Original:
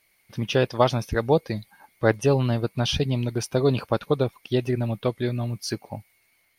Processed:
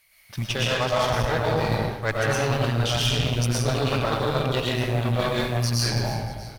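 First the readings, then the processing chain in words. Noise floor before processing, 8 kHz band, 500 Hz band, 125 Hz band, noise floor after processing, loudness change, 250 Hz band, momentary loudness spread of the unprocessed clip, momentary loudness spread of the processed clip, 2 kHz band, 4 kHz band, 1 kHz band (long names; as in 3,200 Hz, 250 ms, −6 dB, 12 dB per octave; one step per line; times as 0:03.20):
−66 dBFS, +6.5 dB, −1.5 dB, +2.0 dB, −46 dBFS, +1.0 dB, −2.0 dB, 11 LU, 4 LU, +6.0 dB, +6.0 dB, +3.0 dB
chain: parametric band 320 Hz −13.5 dB 1.8 octaves
in parallel at −6.5 dB: bit reduction 7 bits
on the sum: comb and all-pass reverb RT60 1.4 s, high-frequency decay 0.7×, pre-delay 75 ms, DRR −7 dB
harmonic generator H 8 −19 dB, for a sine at −2.5 dBFS
echo with shifted repeats 320 ms, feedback 55%, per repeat −85 Hz, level −21 dB
reversed playback
downward compressor 6 to 1, threshold −24 dBFS, peak gain reduction 13.5 dB
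reversed playback
level +4 dB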